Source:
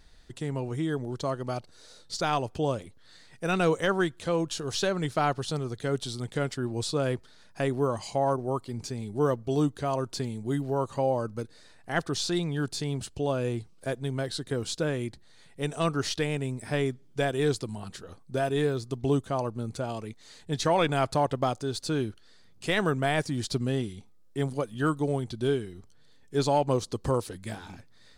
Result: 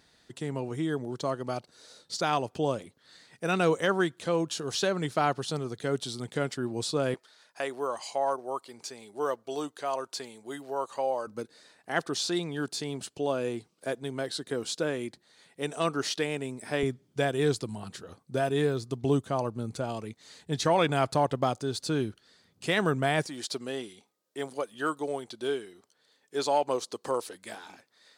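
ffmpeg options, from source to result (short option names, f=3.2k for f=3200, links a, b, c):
-af "asetnsamples=n=441:p=0,asendcmd='7.14 highpass f 540;11.27 highpass f 230;16.83 highpass f 98;23.26 highpass f 420',highpass=150"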